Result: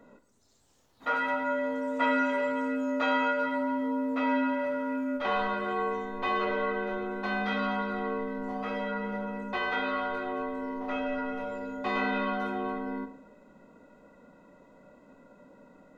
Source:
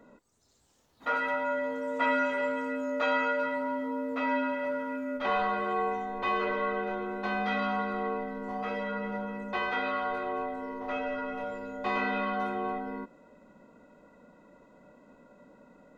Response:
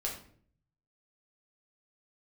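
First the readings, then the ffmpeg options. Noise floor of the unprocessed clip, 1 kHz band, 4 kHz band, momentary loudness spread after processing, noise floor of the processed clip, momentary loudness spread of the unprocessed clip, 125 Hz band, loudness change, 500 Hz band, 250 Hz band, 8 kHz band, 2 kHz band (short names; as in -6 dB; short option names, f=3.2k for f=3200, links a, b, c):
-65 dBFS, 0.0 dB, +2.0 dB, 8 LU, -61 dBFS, 8 LU, +1.0 dB, +1.0 dB, +0.5 dB, +3.5 dB, n/a, +0.5 dB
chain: -filter_complex "[0:a]asplit=2[a][b];[1:a]atrim=start_sample=2205,asetrate=30870,aresample=44100[c];[b][c]afir=irnorm=-1:irlink=0,volume=-10dB[d];[a][d]amix=inputs=2:normalize=0,volume=-2dB"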